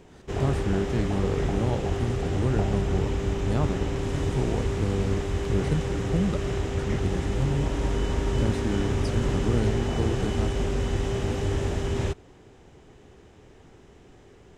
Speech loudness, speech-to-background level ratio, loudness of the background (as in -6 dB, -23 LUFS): -30.5 LUFS, -2.0 dB, -28.5 LUFS